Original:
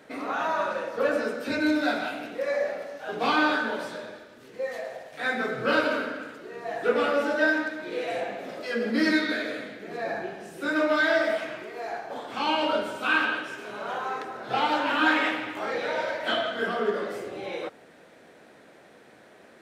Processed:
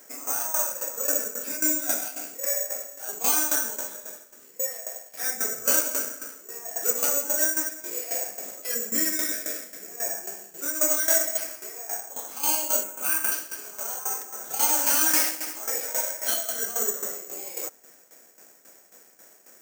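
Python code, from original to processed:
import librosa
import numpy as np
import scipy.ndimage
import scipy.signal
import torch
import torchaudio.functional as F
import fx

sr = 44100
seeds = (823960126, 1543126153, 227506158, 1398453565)

y = fx.highpass(x, sr, hz=340.0, slope=6)
y = (np.kron(scipy.signal.resample_poly(y, 1, 6), np.eye(6)[0]) * 6)[:len(y)]
y = fx.band_shelf(y, sr, hz=4300.0, db=-10.5, octaves=1.1, at=(12.83, 13.32))
y = fx.tremolo_shape(y, sr, shape='saw_down', hz=3.7, depth_pct=75)
y = fx.dynamic_eq(y, sr, hz=1200.0, q=2.4, threshold_db=-41.0, ratio=4.0, max_db=-4)
y = fx.env_flatten(y, sr, amount_pct=50, at=(14.67, 15.21), fade=0.02)
y = F.gain(torch.from_numpy(y), -3.0).numpy()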